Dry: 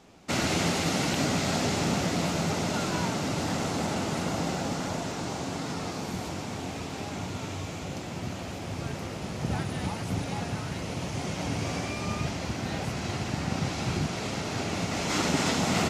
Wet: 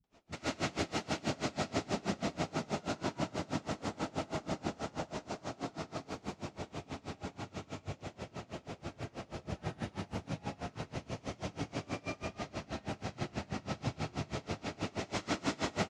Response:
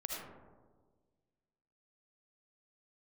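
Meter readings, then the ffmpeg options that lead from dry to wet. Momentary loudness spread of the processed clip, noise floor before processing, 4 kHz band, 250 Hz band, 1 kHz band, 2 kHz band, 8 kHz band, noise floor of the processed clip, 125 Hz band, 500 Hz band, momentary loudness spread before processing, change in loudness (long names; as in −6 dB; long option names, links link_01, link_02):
9 LU, −37 dBFS, −11.0 dB, −9.5 dB, −8.5 dB, −9.5 dB, −13.5 dB, −62 dBFS, −10.5 dB, −7.5 dB, 9 LU, −9.5 dB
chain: -filter_complex "[0:a]lowpass=6900,acrossover=split=160[link_01][link_02];[link_02]adelay=40[link_03];[link_01][link_03]amix=inputs=2:normalize=0[link_04];[1:a]atrim=start_sample=2205[link_05];[link_04][link_05]afir=irnorm=-1:irlink=0,aeval=exprs='val(0)*pow(10,-26*(0.5-0.5*cos(2*PI*6.2*n/s))/20)':channel_layout=same,volume=-3.5dB"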